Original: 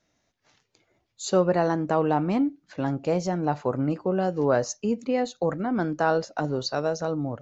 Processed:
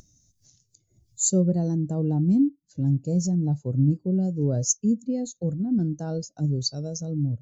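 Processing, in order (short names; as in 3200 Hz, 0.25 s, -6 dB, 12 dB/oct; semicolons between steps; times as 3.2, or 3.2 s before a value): EQ curve 120 Hz 0 dB, 1100 Hz -24 dB, 2400 Hz -18 dB, 7400 Hz +8 dB; upward compressor, threshold -39 dBFS; spectral expander 1.5:1; gain +7 dB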